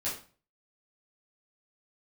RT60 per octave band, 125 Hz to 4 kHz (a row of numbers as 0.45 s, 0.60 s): 0.55 s, 0.45 s, 0.40 s, 0.40 s, 0.35 s, 0.35 s